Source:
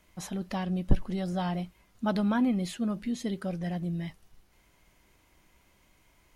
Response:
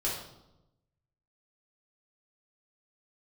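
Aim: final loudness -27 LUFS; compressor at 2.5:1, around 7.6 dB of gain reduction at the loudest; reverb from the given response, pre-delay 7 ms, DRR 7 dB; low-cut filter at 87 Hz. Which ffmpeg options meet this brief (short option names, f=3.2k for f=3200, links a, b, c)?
-filter_complex "[0:a]highpass=87,acompressor=threshold=-33dB:ratio=2.5,asplit=2[a][b];[1:a]atrim=start_sample=2205,adelay=7[c];[b][c]afir=irnorm=-1:irlink=0,volume=-13dB[d];[a][d]amix=inputs=2:normalize=0,volume=9dB"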